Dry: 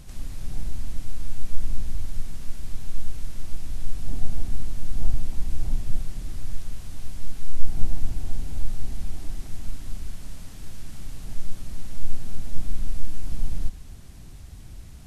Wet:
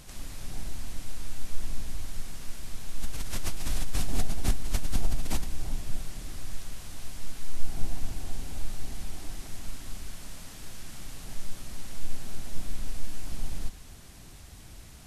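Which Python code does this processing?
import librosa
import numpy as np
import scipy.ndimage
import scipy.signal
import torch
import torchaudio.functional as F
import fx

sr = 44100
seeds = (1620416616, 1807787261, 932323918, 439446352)

y = fx.low_shelf(x, sr, hz=270.0, db=-10.5)
y = fx.pre_swell(y, sr, db_per_s=21.0, at=(2.97, 5.51))
y = y * 10.0 ** (3.0 / 20.0)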